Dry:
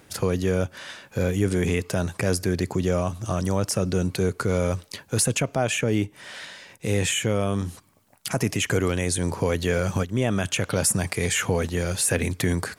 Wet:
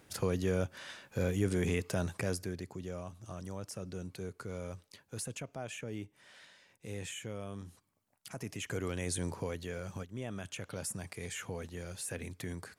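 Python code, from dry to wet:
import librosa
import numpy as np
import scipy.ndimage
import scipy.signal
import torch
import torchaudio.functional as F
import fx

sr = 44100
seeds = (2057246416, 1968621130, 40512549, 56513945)

y = fx.gain(x, sr, db=fx.line((2.13, -8.5), (2.69, -18.5), (8.37, -18.5), (9.18, -10.0), (9.68, -17.5)))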